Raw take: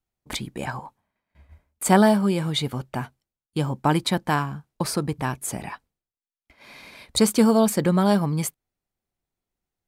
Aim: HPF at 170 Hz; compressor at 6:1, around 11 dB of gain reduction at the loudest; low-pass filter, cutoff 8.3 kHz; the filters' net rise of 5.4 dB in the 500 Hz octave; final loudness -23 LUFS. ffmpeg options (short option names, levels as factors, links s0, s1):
-af "highpass=170,lowpass=8300,equalizer=f=500:t=o:g=7,acompressor=threshold=0.0891:ratio=6,volume=1.88"